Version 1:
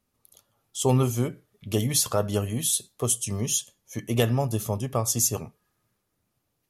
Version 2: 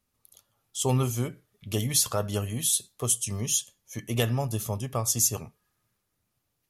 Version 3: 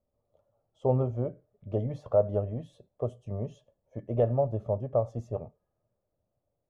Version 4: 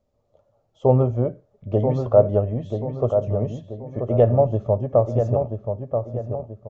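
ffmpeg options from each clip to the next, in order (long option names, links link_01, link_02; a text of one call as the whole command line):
ffmpeg -i in.wav -af "equalizer=frequency=360:width=0.39:gain=-5" out.wav
ffmpeg -i in.wav -af "lowpass=frequency=590:width_type=q:width=5,equalizer=frequency=300:width=0.46:gain=-5.5" out.wav
ffmpeg -i in.wav -filter_complex "[0:a]asplit=2[link_01][link_02];[link_02]adelay=983,lowpass=frequency=2000:poles=1,volume=-6dB,asplit=2[link_03][link_04];[link_04]adelay=983,lowpass=frequency=2000:poles=1,volume=0.41,asplit=2[link_05][link_06];[link_06]adelay=983,lowpass=frequency=2000:poles=1,volume=0.41,asplit=2[link_07][link_08];[link_08]adelay=983,lowpass=frequency=2000:poles=1,volume=0.41,asplit=2[link_09][link_10];[link_10]adelay=983,lowpass=frequency=2000:poles=1,volume=0.41[link_11];[link_01][link_03][link_05][link_07][link_09][link_11]amix=inputs=6:normalize=0,aresample=16000,aresample=44100,volume=9dB" out.wav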